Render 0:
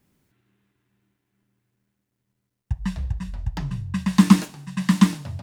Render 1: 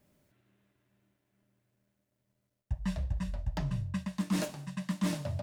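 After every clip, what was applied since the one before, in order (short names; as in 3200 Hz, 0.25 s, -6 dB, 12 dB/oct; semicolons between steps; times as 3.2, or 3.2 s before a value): bell 600 Hz +15 dB 0.23 oct; reverse; compressor 12:1, threshold -25 dBFS, peak gain reduction 19 dB; reverse; gain -3 dB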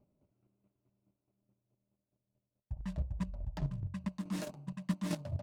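Wiener smoothing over 25 samples; chopper 4.7 Hz, depth 60%, duty 20%; gain +1 dB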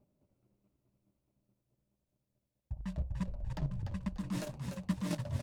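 frequency-shifting echo 0.294 s, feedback 32%, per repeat -59 Hz, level -6 dB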